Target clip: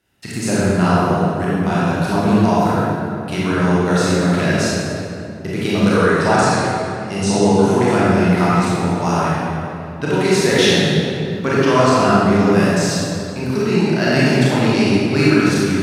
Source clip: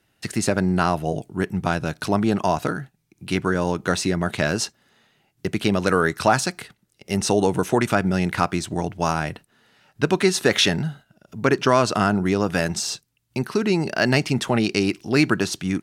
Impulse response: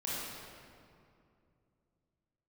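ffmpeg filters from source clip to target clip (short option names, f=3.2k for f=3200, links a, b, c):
-filter_complex "[0:a]asettb=1/sr,asplit=3[a][b][c];[a]atrim=end=5.904[d];[b]atrim=start=5.9:end=7.92,asetpts=PTS-STARTPTS,afade=t=in:d=0.004:c=qsin,afade=t=out:st=2.016:d=0.004:c=qsin,lowpass=f=9.9k:w=0.5412,lowpass=f=9.9k:w=1.3066[e];[c]atrim=start=7.916[f];[d][e]acrossfade=d=0.004:c1=hsin:c2=qsin[g];[g][f]acrossfade=d=0.004:c1=qsin:c2=hsin[h];[1:a]atrim=start_sample=2205,asetrate=37926,aresample=44100[i];[h][i]afir=irnorm=-1:irlink=0"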